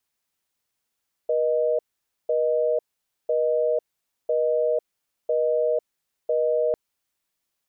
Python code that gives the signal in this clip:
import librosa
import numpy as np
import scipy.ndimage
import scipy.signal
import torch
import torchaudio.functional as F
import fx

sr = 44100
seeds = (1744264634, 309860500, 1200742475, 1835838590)

y = fx.call_progress(sr, length_s=5.45, kind='busy tone', level_db=-22.0)